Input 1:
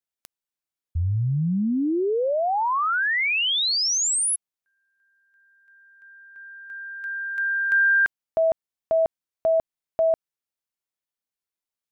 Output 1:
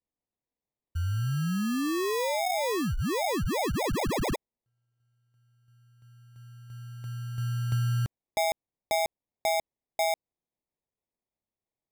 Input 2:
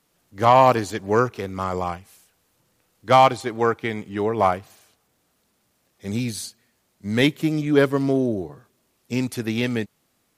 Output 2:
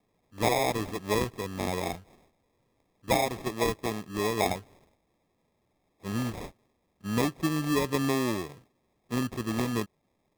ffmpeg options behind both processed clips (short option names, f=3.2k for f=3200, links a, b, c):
-af "acrusher=samples=30:mix=1:aa=0.000001,acompressor=threshold=-20dB:ratio=10:attack=54:release=228:knee=1:detection=peak,volume=-5.5dB"